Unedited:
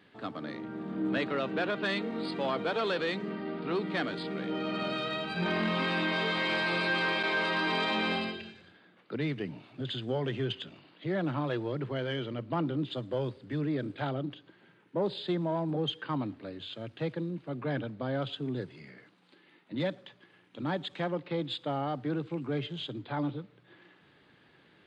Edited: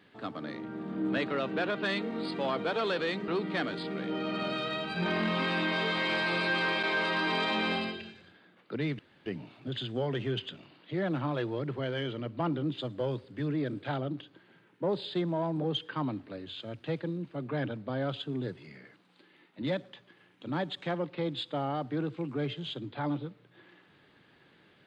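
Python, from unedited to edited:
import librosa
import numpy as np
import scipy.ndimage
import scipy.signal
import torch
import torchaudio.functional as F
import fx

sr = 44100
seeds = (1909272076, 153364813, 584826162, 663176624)

y = fx.edit(x, sr, fx.cut(start_s=3.28, length_s=0.4),
    fx.insert_room_tone(at_s=9.39, length_s=0.27), tone=tone)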